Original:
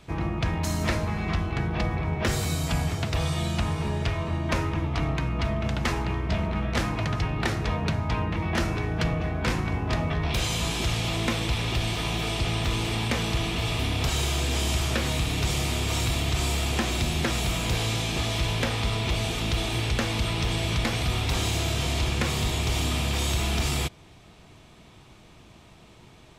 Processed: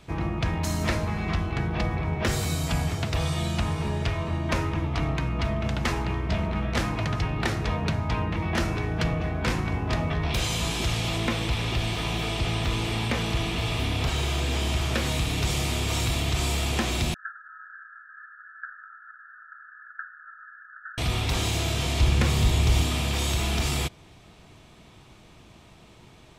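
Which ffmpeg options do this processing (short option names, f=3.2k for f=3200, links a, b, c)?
-filter_complex "[0:a]asettb=1/sr,asplit=3[a][b][c];[a]atrim=end=11.184[d];[b]atrim=start=11.18:end=14.95,asetpts=PTS-STARTPTS,afade=t=in:d=0.004:c=qsin,afade=t=out:st=3.766:d=0.004:c=qsin,acrossover=split=4100[e][f];[f]acompressor=threshold=-39dB:ratio=4:attack=1:release=60[g];[e][g]amix=inputs=2:normalize=0[h];[c]atrim=start=14.946[i];[d][h]acrossfade=d=0.004:c1=hsin:c2=qsin[j];[j][i]acrossfade=d=0.004:c1=qsin:c2=hsin,asettb=1/sr,asplit=3[k][l][m];[k]atrim=end=17.144[n];[l]atrim=start=17.14:end=20.98,asetpts=PTS-STARTPTS,afade=t=in:d=0.004:c=qsin,afade=t=out:st=3.836:d=0.004:c=qsin,asuperpass=centerf=1500:order=20:qfactor=3.1[o];[m]atrim=start=20.976[p];[n][o]acrossfade=d=0.004:c1=hsin:c2=qsin[q];[q][p]acrossfade=d=0.004:c1=qsin:c2=hsin,asettb=1/sr,asplit=3[r][s][t];[r]atrim=end=22.004[u];[s]atrim=start=22:end=22.83,asetpts=PTS-STARTPTS,afade=t=in:d=0.004:c=qsin,afade=t=out:st=0.826:d=0.004:c=qsin,lowshelf=f=150:g=8.5[v];[t]atrim=start=22.826[w];[u][v]acrossfade=d=0.004:c1=hsin:c2=qsin[x];[x][w]acrossfade=d=0.004:c1=qsin:c2=hsin"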